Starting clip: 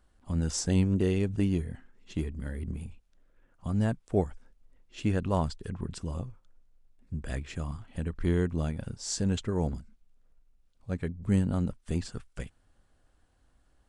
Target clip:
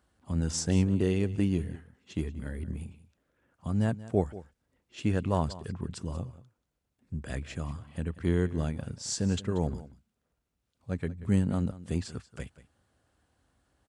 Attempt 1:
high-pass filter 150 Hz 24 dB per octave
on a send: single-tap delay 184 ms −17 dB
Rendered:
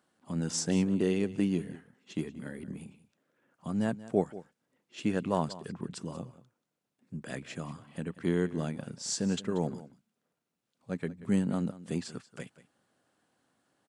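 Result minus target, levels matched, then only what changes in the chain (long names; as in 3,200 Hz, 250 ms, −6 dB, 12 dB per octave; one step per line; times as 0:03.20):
125 Hz band −4.5 dB
change: high-pass filter 64 Hz 24 dB per octave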